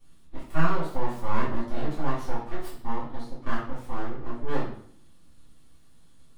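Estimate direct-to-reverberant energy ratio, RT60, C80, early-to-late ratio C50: −13.0 dB, 0.60 s, 8.0 dB, 3.5 dB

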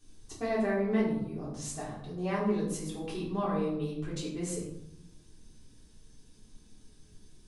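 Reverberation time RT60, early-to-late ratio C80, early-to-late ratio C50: 0.85 s, 6.0 dB, 3.5 dB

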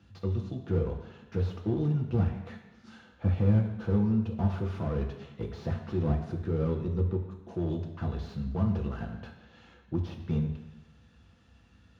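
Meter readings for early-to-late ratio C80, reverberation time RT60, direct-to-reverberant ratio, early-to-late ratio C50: 9.0 dB, 1.1 s, 1.5 dB, 7.0 dB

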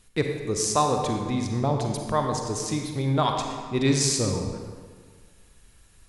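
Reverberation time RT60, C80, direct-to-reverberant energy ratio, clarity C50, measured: 1.7 s, 5.0 dB, 2.5 dB, 3.5 dB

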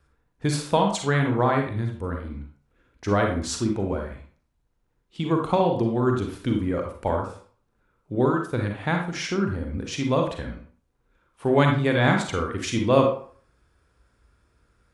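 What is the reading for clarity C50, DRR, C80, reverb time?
4.0 dB, 2.0 dB, 10.0 dB, 0.45 s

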